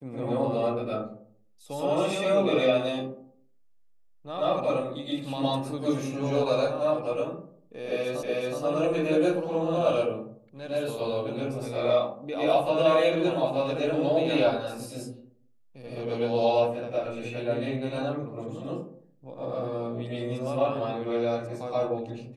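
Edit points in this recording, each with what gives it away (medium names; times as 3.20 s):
8.23 s: repeat of the last 0.37 s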